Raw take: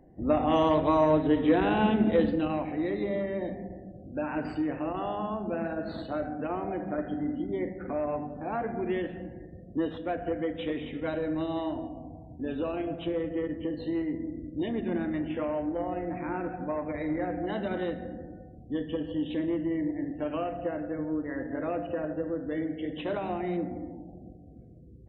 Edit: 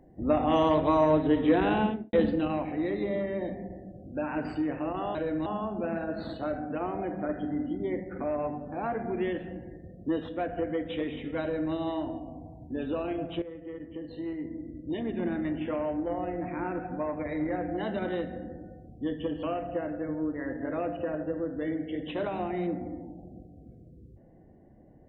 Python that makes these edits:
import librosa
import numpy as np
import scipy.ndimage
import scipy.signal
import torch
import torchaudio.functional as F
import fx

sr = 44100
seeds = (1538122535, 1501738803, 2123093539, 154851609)

y = fx.studio_fade_out(x, sr, start_s=1.72, length_s=0.41)
y = fx.edit(y, sr, fx.duplicate(start_s=11.11, length_s=0.31, to_s=5.15),
    fx.fade_in_from(start_s=13.11, length_s=1.98, floor_db=-12.5),
    fx.cut(start_s=19.12, length_s=1.21), tone=tone)